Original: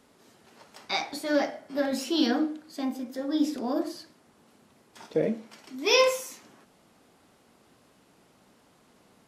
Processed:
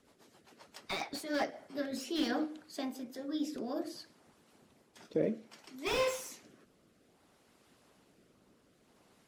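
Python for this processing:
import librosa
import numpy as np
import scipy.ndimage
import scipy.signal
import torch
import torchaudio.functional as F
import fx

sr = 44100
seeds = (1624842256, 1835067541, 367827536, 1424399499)

y = fx.rotary_switch(x, sr, hz=7.5, then_hz=0.6, switch_at_s=0.97)
y = fx.hpss(y, sr, part='harmonic', gain_db=-8)
y = fx.slew_limit(y, sr, full_power_hz=54.0)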